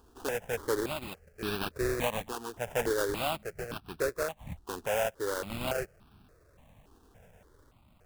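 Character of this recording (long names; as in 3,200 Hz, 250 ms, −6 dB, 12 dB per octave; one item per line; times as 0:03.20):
aliases and images of a low sample rate 2,100 Hz, jitter 20%
sample-and-hold tremolo
notches that jump at a steady rate 3.5 Hz 580–2,000 Hz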